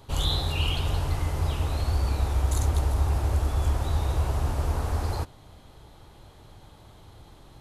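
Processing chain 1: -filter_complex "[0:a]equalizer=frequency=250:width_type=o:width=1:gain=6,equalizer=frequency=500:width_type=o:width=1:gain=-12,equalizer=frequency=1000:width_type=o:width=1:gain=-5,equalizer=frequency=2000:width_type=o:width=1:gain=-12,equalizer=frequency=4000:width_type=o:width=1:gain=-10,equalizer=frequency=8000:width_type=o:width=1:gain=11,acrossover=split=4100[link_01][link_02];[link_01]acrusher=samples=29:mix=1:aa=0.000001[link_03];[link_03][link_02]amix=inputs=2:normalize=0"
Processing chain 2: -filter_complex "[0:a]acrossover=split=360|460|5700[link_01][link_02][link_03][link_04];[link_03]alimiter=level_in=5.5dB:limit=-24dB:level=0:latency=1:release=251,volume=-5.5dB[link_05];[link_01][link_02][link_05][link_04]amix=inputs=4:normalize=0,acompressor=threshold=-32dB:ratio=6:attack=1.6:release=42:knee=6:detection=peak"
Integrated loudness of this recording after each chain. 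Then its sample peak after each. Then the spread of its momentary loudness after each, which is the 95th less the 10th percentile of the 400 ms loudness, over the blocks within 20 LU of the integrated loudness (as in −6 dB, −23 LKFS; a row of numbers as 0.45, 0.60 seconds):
−27.5, −36.5 LKFS; −13.5, −26.0 dBFS; 4, 15 LU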